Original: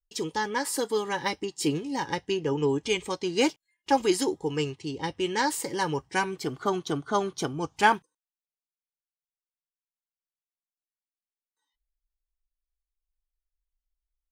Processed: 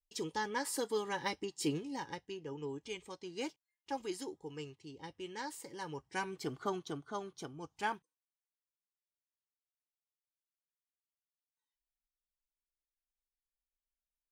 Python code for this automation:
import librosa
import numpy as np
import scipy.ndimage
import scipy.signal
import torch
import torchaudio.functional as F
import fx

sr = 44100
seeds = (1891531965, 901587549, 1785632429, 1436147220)

y = fx.gain(x, sr, db=fx.line((1.8, -8.0), (2.3, -16.5), (5.76, -16.5), (6.51, -7.5), (7.2, -15.5)))